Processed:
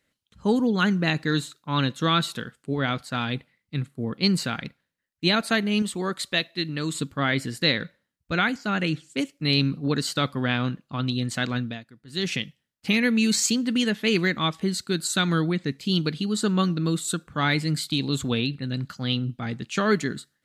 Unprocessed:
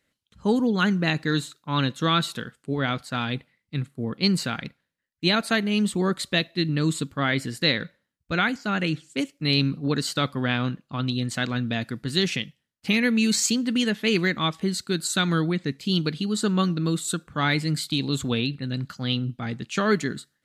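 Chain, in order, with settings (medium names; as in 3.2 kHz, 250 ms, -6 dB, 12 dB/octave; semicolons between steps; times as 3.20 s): 5.82–6.95 s: bass shelf 360 Hz -8.5 dB; 11.57–12.33 s: dip -18.5 dB, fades 0.26 s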